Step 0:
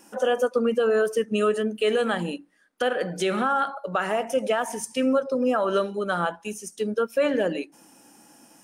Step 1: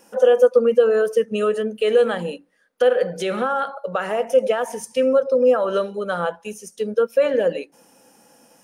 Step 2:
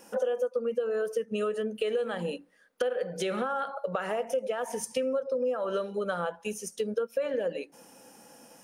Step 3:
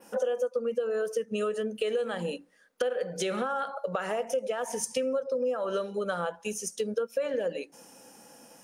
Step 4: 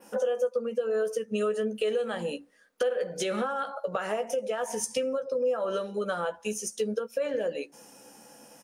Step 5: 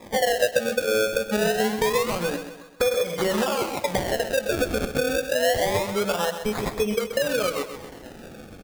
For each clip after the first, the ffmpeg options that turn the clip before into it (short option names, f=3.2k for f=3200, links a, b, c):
-af "equalizer=f=315:t=o:w=0.33:g=-8,equalizer=f=500:t=o:w=0.33:g=11,equalizer=f=8k:t=o:w=0.33:g=-4"
-af "acompressor=threshold=-28dB:ratio=5"
-af "adynamicequalizer=threshold=0.00141:dfrequency=6600:dqfactor=1.1:tfrequency=6600:tqfactor=1.1:attack=5:release=100:ratio=0.375:range=3:mode=boostabove:tftype=bell"
-filter_complex "[0:a]asplit=2[a][b];[b]adelay=14,volume=-8.5dB[c];[a][c]amix=inputs=2:normalize=0"
-filter_complex "[0:a]asplit=2[a][b];[b]acompressor=threshold=-37dB:ratio=6,volume=2dB[c];[a][c]amix=inputs=2:normalize=0,acrusher=samples=30:mix=1:aa=0.000001:lfo=1:lforange=30:lforate=0.26,aecho=1:1:130|260|390|520|650:0.316|0.142|0.064|0.0288|0.013,volume=2.5dB"